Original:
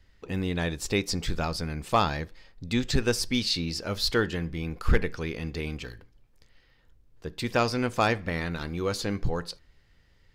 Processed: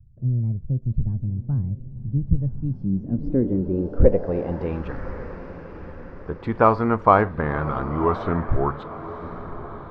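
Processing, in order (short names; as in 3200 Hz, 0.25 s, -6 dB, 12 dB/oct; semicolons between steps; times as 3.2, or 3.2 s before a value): speed glide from 134% -> 75%; diffused feedback echo 1.055 s, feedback 49%, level -13 dB; low-pass sweep 130 Hz -> 1100 Hz, 2.58–4.8; gain +5.5 dB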